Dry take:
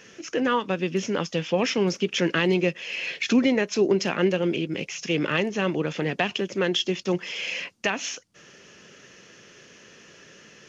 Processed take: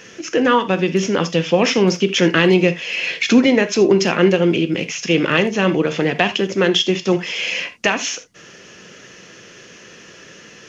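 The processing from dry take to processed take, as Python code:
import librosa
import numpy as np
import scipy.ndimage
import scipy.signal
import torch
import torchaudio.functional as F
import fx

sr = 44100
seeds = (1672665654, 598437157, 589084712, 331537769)

y = fx.rev_gated(x, sr, seeds[0], gate_ms=100, shape='flat', drr_db=10.0)
y = y * 10.0 ** (8.0 / 20.0)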